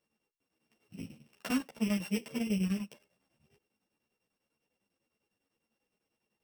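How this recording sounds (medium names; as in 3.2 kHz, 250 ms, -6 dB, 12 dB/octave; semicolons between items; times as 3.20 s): a buzz of ramps at a fixed pitch in blocks of 16 samples; chopped level 10 Hz, depth 65%, duty 70%; a shimmering, thickened sound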